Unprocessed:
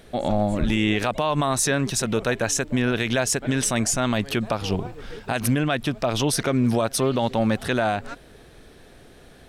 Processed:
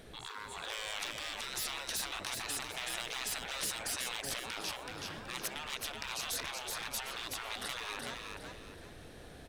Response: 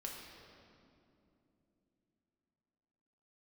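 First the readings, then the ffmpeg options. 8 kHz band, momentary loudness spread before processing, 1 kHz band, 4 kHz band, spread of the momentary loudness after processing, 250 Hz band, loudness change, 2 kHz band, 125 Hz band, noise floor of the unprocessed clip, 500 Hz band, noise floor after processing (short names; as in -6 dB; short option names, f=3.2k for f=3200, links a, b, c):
-12.5 dB, 5 LU, -15.5 dB, -7.0 dB, 9 LU, -29.0 dB, -15.0 dB, -11.5 dB, -28.0 dB, -49 dBFS, -23.0 dB, -51 dBFS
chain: -filter_complex "[0:a]asoftclip=type=hard:threshold=-16.5dB,afftfilt=real='re*lt(hypot(re,im),0.0708)':imag='im*lt(hypot(re,im),0.0708)':win_size=1024:overlap=0.75,asplit=5[a][b][c][d][e];[b]adelay=376,afreqshift=47,volume=-4dB[f];[c]adelay=752,afreqshift=94,volume=-13.9dB[g];[d]adelay=1128,afreqshift=141,volume=-23.8dB[h];[e]adelay=1504,afreqshift=188,volume=-33.7dB[i];[a][f][g][h][i]amix=inputs=5:normalize=0,volume=-4.5dB"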